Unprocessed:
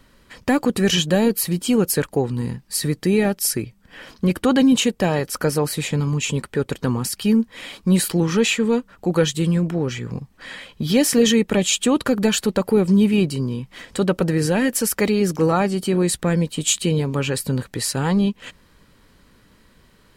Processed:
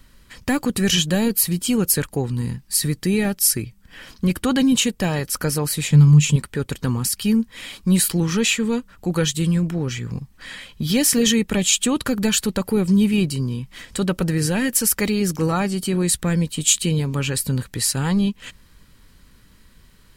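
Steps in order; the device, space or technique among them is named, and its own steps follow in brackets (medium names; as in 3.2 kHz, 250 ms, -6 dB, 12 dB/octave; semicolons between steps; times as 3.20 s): smiley-face EQ (bass shelf 83 Hz +7.5 dB; peaking EQ 540 Hz -6 dB 2 oct; treble shelf 6.1 kHz +6 dB); 5.90–6.36 s: peaking EQ 150 Hz +11.5 dB 0.33 oct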